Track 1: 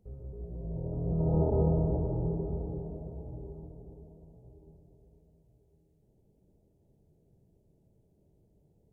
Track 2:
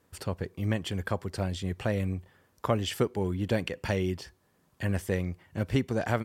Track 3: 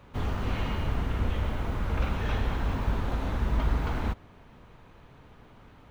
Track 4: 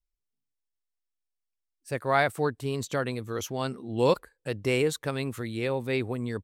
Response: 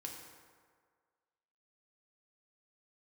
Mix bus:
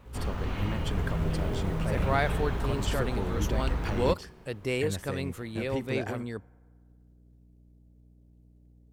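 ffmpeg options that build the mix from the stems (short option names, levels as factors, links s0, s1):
-filter_complex "[0:a]alimiter=limit=0.0668:level=0:latency=1,acrusher=bits=6:mode=log:mix=0:aa=0.000001,volume=0.473,asplit=2[s0][s1];[s1]volume=0.596[s2];[1:a]alimiter=limit=0.0891:level=0:latency=1:release=218,volume=0.708,asplit=2[s3][s4];[s4]volume=0.251[s5];[2:a]volume=0.708[s6];[3:a]volume=0.631[s7];[4:a]atrim=start_sample=2205[s8];[s2][s5]amix=inputs=2:normalize=0[s9];[s9][s8]afir=irnorm=-1:irlink=0[s10];[s0][s3][s6][s7][s10]amix=inputs=5:normalize=0,aeval=exprs='val(0)+0.00158*(sin(2*PI*60*n/s)+sin(2*PI*2*60*n/s)/2+sin(2*PI*3*60*n/s)/3+sin(2*PI*4*60*n/s)/4+sin(2*PI*5*60*n/s)/5)':c=same"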